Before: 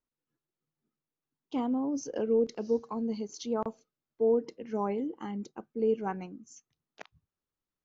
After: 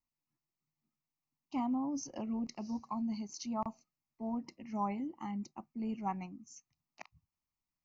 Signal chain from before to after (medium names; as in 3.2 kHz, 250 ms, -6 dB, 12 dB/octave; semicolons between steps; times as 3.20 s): static phaser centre 2.3 kHz, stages 8